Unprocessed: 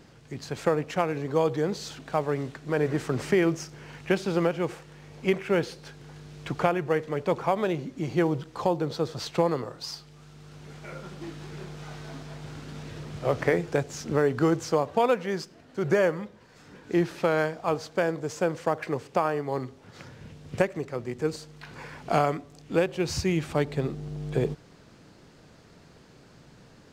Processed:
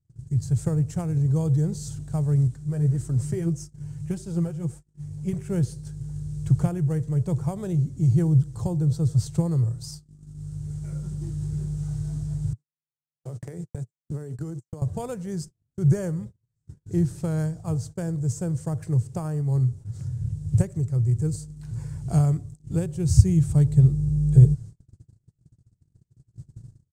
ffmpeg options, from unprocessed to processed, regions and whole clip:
-filter_complex "[0:a]asettb=1/sr,asplit=3[s0][s1][s2];[s0]atrim=end=2.474[s3];[s1]atrim=start=2.47:end=5.33,asetpts=PTS-STARTPTS,afade=t=in:d=0.004:c=qsin,afade=t=out:st=2.856:d=0.004:c=qsin,acompressor=mode=upward:threshold=0.0126:ratio=2.5:attack=3.2:release=140:knee=2.83:detection=peak,flanger=delay=2.9:depth=5.2:regen=31:speed=1.7:shape=sinusoidal[s4];[s2]atrim=start=5.326[s5];[s3][s4]acrossfade=d=0.004:c1=hsin:c2=qsin[s6];[s6][s5]acrossfade=d=0.004:c1=qsin:c2=hsin,asettb=1/sr,asplit=3[s7][s8][s9];[s7]atrim=end=12.534[s10];[s8]atrim=start=12.53:end=14.82,asetpts=PTS-STARTPTS,afade=t=in:d=0.004:c=qsin,afade=t=out:st=2.286:d=0.004:c=qsin,highpass=f=180:w=0.5412,highpass=f=180:w=1.3066,agate=range=0.0158:threshold=0.02:ratio=16:release=100:detection=peak,acompressor=threshold=0.0398:ratio=12:attack=3.2:release=140:knee=1:detection=peak[s11];[s9]atrim=start=14.816[s12];[s10][s11]acrossfade=d=0.004:c1=hsin:c2=qsin[s13];[s13][s12]acrossfade=d=0.004:c1=qsin:c2=hsin,lowshelf=f=170:t=q:w=3:g=13.5,agate=range=0.0178:threshold=0.0141:ratio=16:detection=peak,firequalizer=gain_entry='entry(310,0);entry(500,-10);entry(1100,-16);entry(1600,-16);entry(2400,-20);entry(8300,10);entry(12000,0)':delay=0.05:min_phase=1,volume=1.12"

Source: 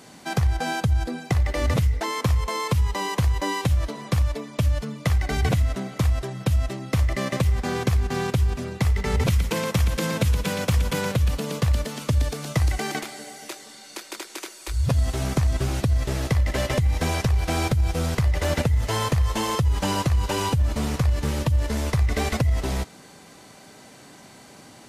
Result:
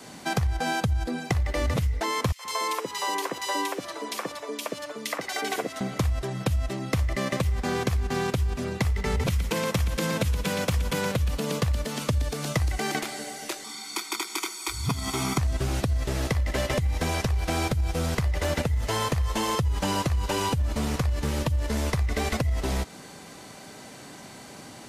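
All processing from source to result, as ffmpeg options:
-filter_complex "[0:a]asettb=1/sr,asplit=3[s0][s1][s2];[s0]atrim=end=2.324[s3];[s1]atrim=start=2.32:end=5.81,asetpts=PTS-STARTPTS,afade=t=in:d=0.004:c=qsin,afade=t=out:st=3.486:d=0.004:c=qsin,highpass=f=300:w=0.5412,highpass=f=300:w=1.3066,acrossover=split=560|2300[s4][s5][s6];[s5]adelay=70[s7];[s4]adelay=130[s8];[s8][s7][s6]amix=inputs=3:normalize=0,atrim=end_sample=153909[s9];[s2]atrim=start=5.806[s10];[s3][s9]acrossfade=d=0.004:c1=hsin:c2=qsin[s11];[s11][s10]acrossfade=d=0.004:c1=qsin:c2=hsin,asettb=1/sr,asplit=3[s12][s13][s14];[s12]atrim=end=13.644[s15];[s13]atrim=start=13.64:end=15.38,asetpts=PTS-STARTPTS,afade=t=in:d=0.004:c=qsin,afade=t=out:st=1.736:d=0.004:c=qsin,highpass=220,aecho=1:1:0.9:0.98,atrim=end_sample=76734[s16];[s14]atrim=start=15.376[s17];[s15][s16]acrossfade=d=0.004:c1=hsin:c2=qsin[s18];[s18][s17]acrossfade=d=0.004:c1=qsin:c2=hsin,adynamicequalizer=threshold=0.0141:dfrequency=110:dqfactor=1.8:tfrequency=110:tqfactor=1.8:attack=5:release=100:ratio=0.375:range=2:mode=cutabove:tftype=bell,acompressor=threshold=0.0447:ratio=3,volume=1.41"

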